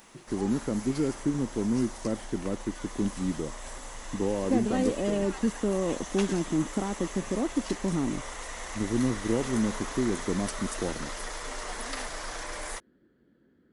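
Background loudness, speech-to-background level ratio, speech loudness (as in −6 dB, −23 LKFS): −39.0 LKFS, 9.0 dB, −30.0 LKFS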